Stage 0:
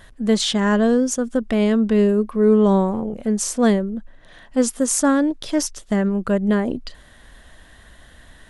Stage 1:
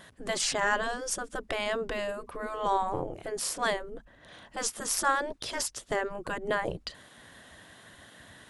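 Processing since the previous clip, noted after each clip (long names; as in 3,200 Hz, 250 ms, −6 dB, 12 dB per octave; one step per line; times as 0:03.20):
gate on every frequency bin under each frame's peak −10 dB weak
level −1.5 dB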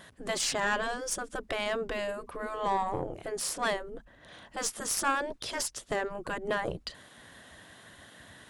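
one-sided soft clipper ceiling −20 dBFS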